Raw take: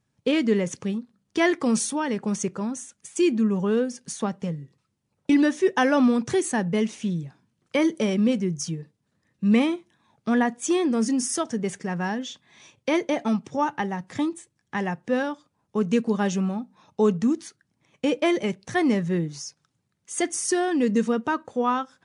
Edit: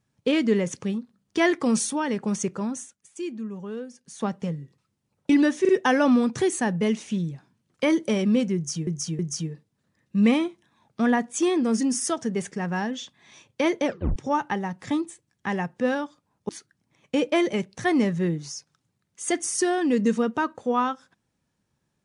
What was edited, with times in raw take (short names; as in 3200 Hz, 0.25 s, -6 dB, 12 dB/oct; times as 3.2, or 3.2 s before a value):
2.81–4.26 dip -11.5 dB, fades 0.15 s
5.61 stutter 0.04 s, 3 plays
8.47–8.79 loop, 3 plays
13.13 tape stop 0.31 s
15.77–17.39 cut